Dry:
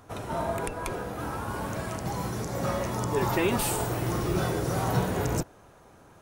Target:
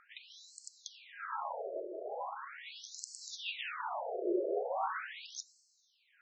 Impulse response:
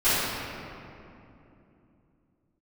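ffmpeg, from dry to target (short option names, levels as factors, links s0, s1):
-filter_complex "[0:a]asplit=2[s0][s1];[s1]equalizer=f=1100:t=o:w=1.8:g=9[s2];[1:a]atrim=start_sample=2205,adelay=23[s3];[s2][s3]afir=irnorm=-1:irlink=0,volume=0.0178[s4];[s0][s4]amix=inputs=2:normalize=0,afftfilt=real='re*between(b*sr/1024,450*pow(5900/450,0.5+0.5*sin(2*PI*0.4*pts/sr))/1.41,450*pow(5900/450,0.5+0.5*sin(2*PI*0.4*pts/sr))*1.41)':imag='im*between(b*sr/1024,450*pow(5900/450,0.5+0.5*sin(2*PI*0.4*pts/sr))/1.41,450*pow(5900/450,0.5+0.5*sin(2*PI*0.4*pts/sr))*1.41)':win_size=1024:overlap=0.75,volume=0.891"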